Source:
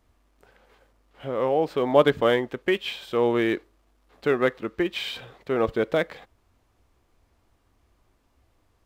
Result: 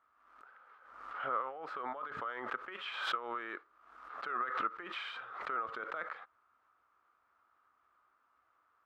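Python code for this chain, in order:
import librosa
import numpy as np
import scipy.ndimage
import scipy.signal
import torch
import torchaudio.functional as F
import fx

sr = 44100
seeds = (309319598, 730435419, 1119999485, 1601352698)

y = fx.over_compress(x, sr, threshold_db=-27.0, ratio=-1.0)
y = fx.bandpass_q(y, sr, hz=1300.0, q=7.5)
y = fx.pre_swell(y, sr, db_per_s=54.0)
y = F.gain(torch.from_numpy(y), 5.0).numpy()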